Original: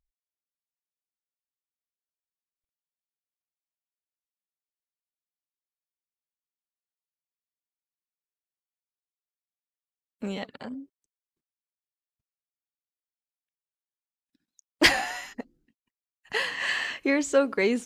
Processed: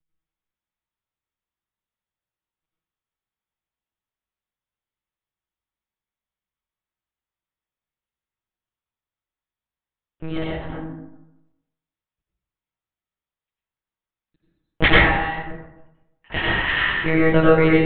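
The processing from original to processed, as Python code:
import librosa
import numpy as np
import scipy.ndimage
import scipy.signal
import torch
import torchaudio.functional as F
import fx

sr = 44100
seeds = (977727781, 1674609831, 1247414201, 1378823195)

y = fx.lpc_monotone(x, sr, seeds[0], pitch_hz=160.0, order=8)
y = fx.rev_plate(y, sr, seeds[1], rt60_s=0.94, hf_ratio=0.45, predelay_ms=75, drr_db=-5.0)
y = y * librosa.db_to_amplitude(3.0)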